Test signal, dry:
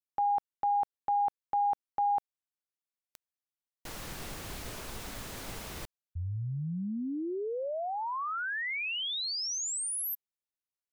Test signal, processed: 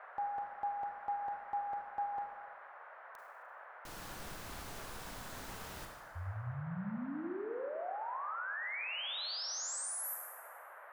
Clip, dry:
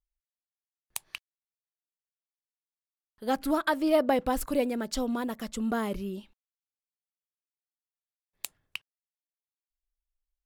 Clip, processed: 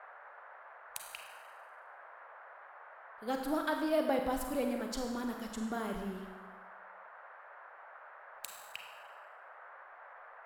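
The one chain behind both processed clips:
four-comb reverb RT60 1.2 s, combs from 33 ms, DRR 3 dB
noise in a band 550–1,700 Hz −45 dBFS
level −8 dB

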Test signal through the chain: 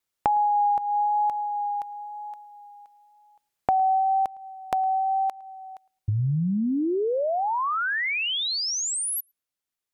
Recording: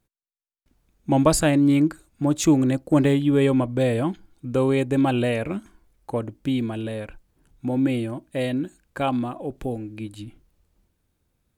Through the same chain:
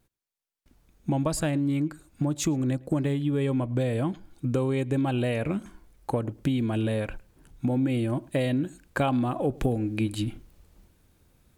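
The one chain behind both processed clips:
dynamic equaliser 140 Hz, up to +5 dB, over −38 dBFS, Q 1.9
downward compressor 5 to 1, threshold −30 dBFS
pitch vibrato 1 Hz 14 cents
speech leveller within 5 dB 2 s
on a send: feedback echo with a low-pass in the loop 109 ms, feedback 18%, low-pass 3,200 Hz, level −24 dB
on the sum: level +6 dB

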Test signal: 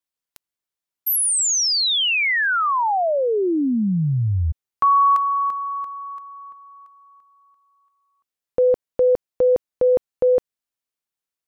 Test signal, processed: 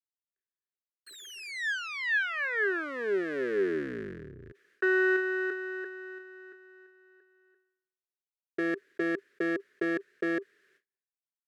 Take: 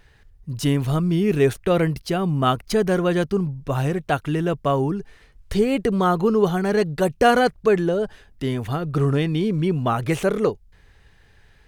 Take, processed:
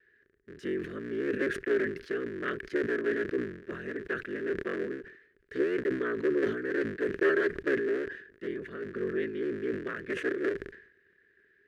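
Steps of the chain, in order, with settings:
sub-harmonics by changed cycles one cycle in 3, inverted
noise gate with hold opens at −48 dBFS, hold 341 ms, range −34 dB
pair of resonant band-passes 820 Hz, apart 2.1 octaves
level that may fall only so fast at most 87 dB per second
level −1.5 dB

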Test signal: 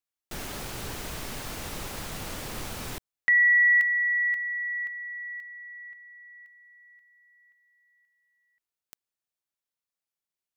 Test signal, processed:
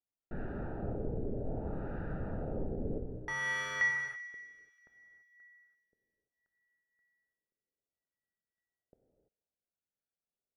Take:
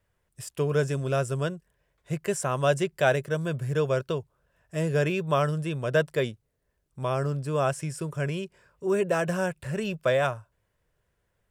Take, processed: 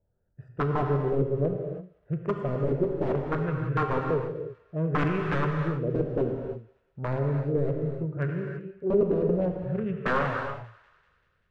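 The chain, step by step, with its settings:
adaptive Wiener filter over 41 samples
wrap-around overflow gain 20 dB
dynamic equaliser 790 Hz, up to −8 dB, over −46 dBFS, Q 1.6
auto-filter low-pass sine 0.63 Hz 450–1,600 Hz
on a send: feedback echo with a high-pass in the loop 194 ms, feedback 64%, high-pass 1,100 Hz, level −19 dB
on the sum: reverb whose tail is shaped and stops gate 360 ms flat, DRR 2 dB

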